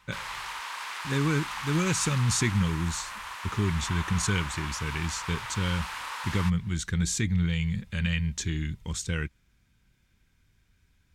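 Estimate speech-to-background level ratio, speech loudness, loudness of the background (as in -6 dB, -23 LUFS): 7.0 dB, -29.0 LUFS, -36.0 LUFS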